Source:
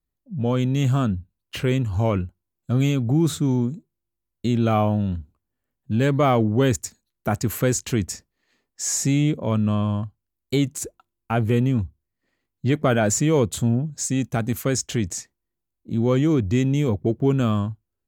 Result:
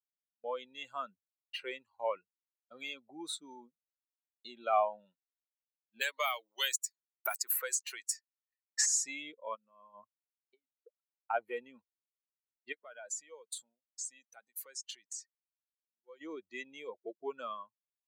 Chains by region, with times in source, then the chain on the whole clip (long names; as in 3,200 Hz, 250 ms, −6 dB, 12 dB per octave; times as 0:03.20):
0:06.01–0:08.86: high-pass filter 960 Hz 6 dB per octave + high-shelf EQ 9,400 Hz +10 dB + multiband upward and downward compressor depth 100%
0:09.55–0:11.34: high-frequency loss of the air 370 metres + compressor whose output falls as the input rises −25 dBFS, ratio −0.5
0:12.72–0:16.21: high-shelf EQ 2,400 Hz +5 dB + downward compressor 8 to 1, threshold −26 dBFS
whole clip: spectral dynamics exaggerated over time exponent 2; high-pass filter 580 Hz 24 dB per octave; downward expander −54 dBFS; level −2.5 dB